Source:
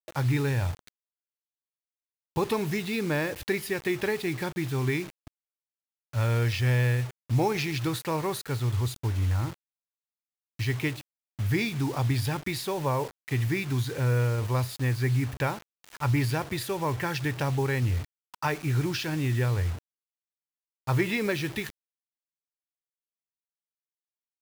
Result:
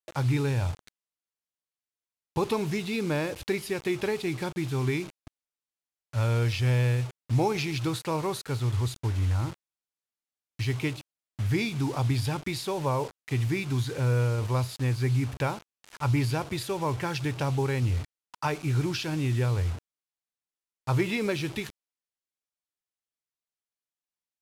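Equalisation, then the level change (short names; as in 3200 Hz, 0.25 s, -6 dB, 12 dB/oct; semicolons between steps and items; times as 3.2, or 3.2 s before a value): dynamic EQ 1800 Hz, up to -7 dB, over -50 dBFS, Q 4; LPF 11000 Hz 12 dB/oct; 0.0 dB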